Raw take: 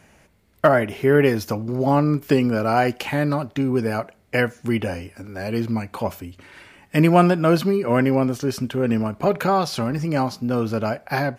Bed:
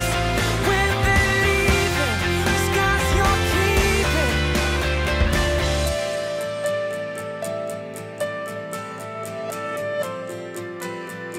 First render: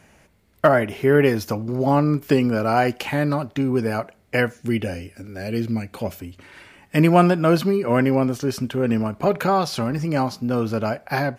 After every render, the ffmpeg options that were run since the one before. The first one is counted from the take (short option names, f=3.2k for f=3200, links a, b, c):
-filter_complex "[0:a]asettb=1/sr,asplit=3[a][b][c];[a]atrim=end=4.574[d];[b]atrim=start=4.57:end=6.2,asetpts=PTS-STARTPTS,afade=t=in:d=0.004:c=qsin,afade=t=out:st=1.626:d=0.004:c=qsin,equalizer=f=1k:w=1.8:g=-10.5[e];[c]atrim=start=6.196[f];[d][e]acrossfade=d=0.004:c1=hsin:c2=qsin[g];[g][f]acrossfade=d=0.004:c1=qsin:c2=hsin"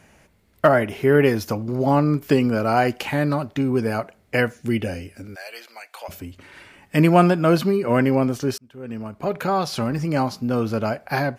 -filter_complex "[0:a]asplit=3[a][b][c];[a]afade=t=out:st=5.34:d=0.02[d];[b]highpass=f=710:w=0.5412,highpass=f=710:w=1.3066,afade=t=in:st=5.34:d=0.02,afade=t=out:st=6.08:d=0.02[e];[c]afade=t=in:st=6.08:d=0.02[f];[d][e][f]amix=inputs=3:normalize=0,asplit=2[g][h];[g]atrim=end=8.58,asetpts=PTS-STARTPTS,afade=t=out:st=8.576:d=0.004:c=hsin[i];[h]atrim=start=8.58,asetpts=PTS-STARTPTS,afade=t=in:d=1.25[j];[i][j]concat=n=2:v=0:a=1"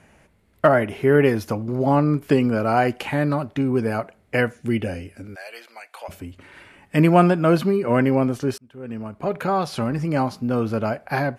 -af "lowpass=f=12k:w=0.5412,lowpass=f=12k:w=1.3066,equalizer=f=5.6k:w=0.96:g=-6"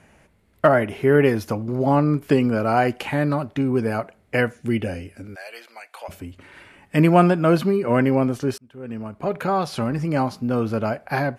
-af anull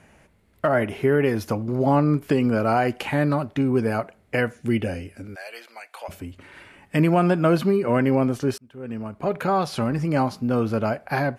-af "alimiter=limit=-9.5dB:level=0:latency=1:release=160"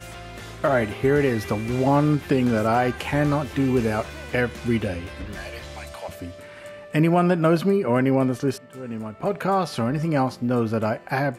-filter_complex "[1:a]volume=-17dB[a];[0:a][a]amix=inputs=2:normalize=0"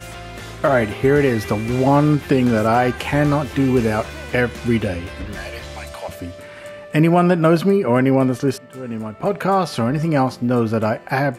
-af "volume=4.5dB"